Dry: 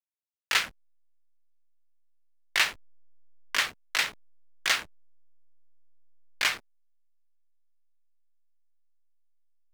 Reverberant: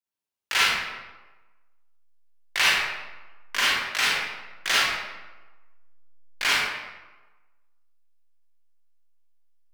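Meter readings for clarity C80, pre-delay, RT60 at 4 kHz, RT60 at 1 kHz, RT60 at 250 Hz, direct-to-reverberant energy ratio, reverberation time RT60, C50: 0.5 dB, 35 ms, 0.75 s, 1.2 s, 1.1 s, -8.5 dB, 1.2 s, -3.5 dB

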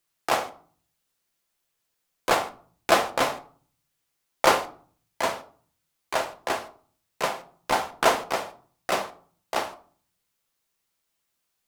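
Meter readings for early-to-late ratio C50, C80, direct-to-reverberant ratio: 15.5 dB, 20.5 dB, 7.0 dB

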